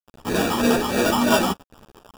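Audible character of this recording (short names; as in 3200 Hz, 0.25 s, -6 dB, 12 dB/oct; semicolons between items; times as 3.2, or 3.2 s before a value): a quantiser's noise floor 6-bit, dither none; phasing stages 8, 3.2 Hz, lowest notch 540–1800 Hz; aliases and images of a low sample rate 2100 Hz, jitter 0%; a shimmering, thickened sound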